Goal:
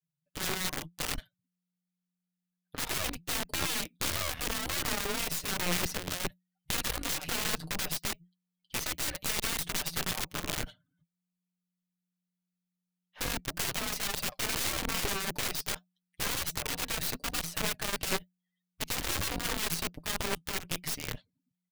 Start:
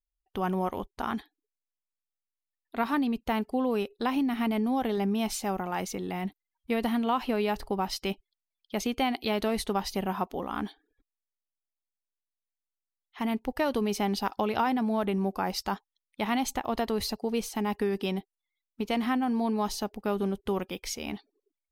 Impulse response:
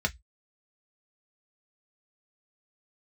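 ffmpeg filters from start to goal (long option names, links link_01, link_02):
-af "flanger=delay=4.9:depth=4.3:regen=45:speed=0.86:shape=sinusoidal,aecho=1:1:6.4:0.75,aeval=exprs='(mod(35.5*val(0)+1,2)-1)/35.5':channel_layout=same,equalizer=frequency=1000:width_type=o:width=1.2:gain=-4.5,afreqshift=-180,aeval=exprs='0.0944*(cos(1*acos(clip(val(0)/0.0944,-1,1)))-cos(1*PI/2))+0.0237*(cos(4*acos(clip(val(0)/0.0944,-1,1)))-cos(4*PI/2))+0.0075*(cos(7*acos(clip(val(0)/0.0944,-1,1)))-cos(7*PI/2))':channel_layout=same,volume=5.5dB"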